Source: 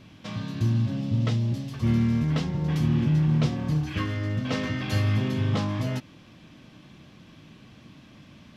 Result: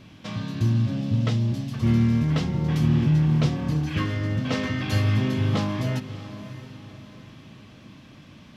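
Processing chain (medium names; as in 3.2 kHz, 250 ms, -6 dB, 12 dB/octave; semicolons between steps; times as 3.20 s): echo that smears into a reverb 622 ms, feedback 41%, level -13.5 dB; trim +2 dB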